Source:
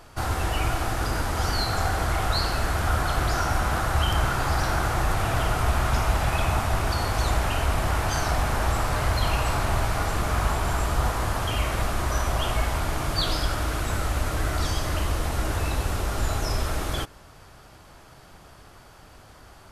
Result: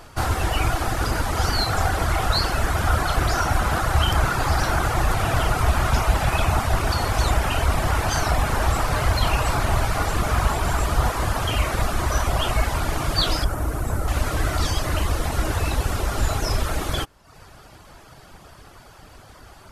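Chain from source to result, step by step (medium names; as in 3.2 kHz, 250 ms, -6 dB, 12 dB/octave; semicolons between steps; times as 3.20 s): reverb removal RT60 0.67 s; 13.44–14.08 s: peaking EQ 3.4 kHz -14 dB 2.1 oct; trim +5 dB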